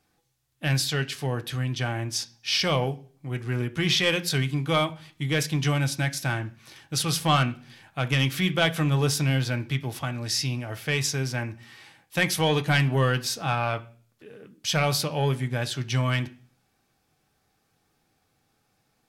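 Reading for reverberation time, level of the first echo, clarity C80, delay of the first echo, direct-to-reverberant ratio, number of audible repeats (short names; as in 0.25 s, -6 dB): 0.45 s, none, 23.0 dB, none, 7.0 dB, none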